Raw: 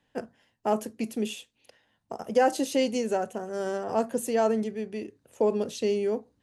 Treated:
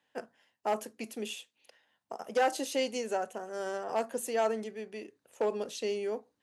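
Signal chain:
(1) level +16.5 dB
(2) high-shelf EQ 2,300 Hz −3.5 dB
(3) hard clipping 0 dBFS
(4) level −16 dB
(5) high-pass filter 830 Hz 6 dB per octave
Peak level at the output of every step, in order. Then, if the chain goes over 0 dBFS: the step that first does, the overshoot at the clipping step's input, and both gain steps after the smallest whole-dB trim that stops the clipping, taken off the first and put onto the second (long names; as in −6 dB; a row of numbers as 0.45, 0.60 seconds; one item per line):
+5.0, +4.5, 0.0, −16.0, −14.5 dBFS
step 1, 4.5 dB
step 1 +11.5 dB, step 4 −11 dB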